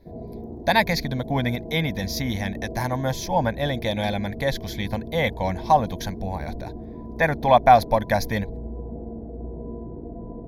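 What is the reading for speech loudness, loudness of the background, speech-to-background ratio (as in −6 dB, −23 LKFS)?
−23.5 LKFS, −36.5 LKFS, 13.0 dB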